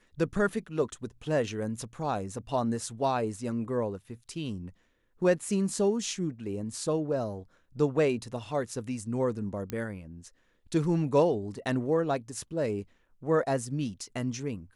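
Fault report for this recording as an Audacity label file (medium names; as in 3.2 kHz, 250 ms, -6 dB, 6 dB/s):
9.700000	9.700000	pop -19 dBFS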